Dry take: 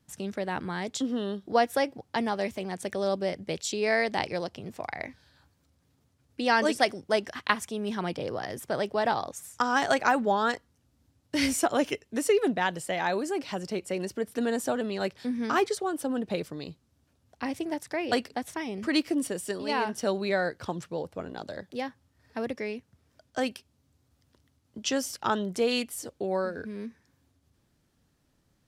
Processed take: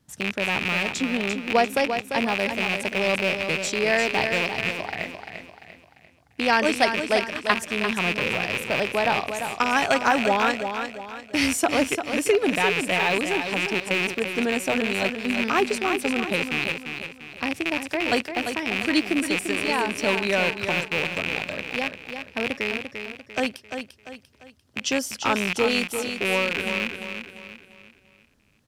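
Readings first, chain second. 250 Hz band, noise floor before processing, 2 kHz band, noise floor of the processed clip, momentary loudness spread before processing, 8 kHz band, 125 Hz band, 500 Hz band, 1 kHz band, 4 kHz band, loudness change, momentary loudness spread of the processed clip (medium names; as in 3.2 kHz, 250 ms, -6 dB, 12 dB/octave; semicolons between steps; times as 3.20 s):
+4.0 dB, -71 dBFS, +9.5 dB, -57 dBFS, 13 LU, +4.5 dB, +5.0 dB, +3.5 dB, +4.0 dB, +8.5 dB, +6.0 dB, 11 LU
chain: rattle on loud lows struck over -42 dBFS, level -16 dBFS; on a send: feedback delay 345 ms, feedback 40%, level -7.5 dB; on the sum: trim +3 dB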